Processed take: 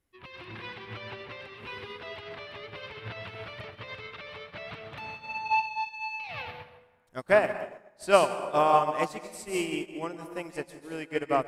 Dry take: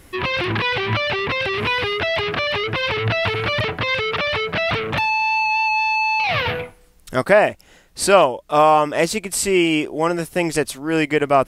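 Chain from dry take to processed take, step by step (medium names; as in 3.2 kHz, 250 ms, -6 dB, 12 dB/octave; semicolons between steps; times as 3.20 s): plate-style reverb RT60 1.9 s, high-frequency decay 0.55×, pre-delay 115 ms, DRR 3 dB; upward expansion 2.5:1, over -27 dBFS; trim -5.5 dB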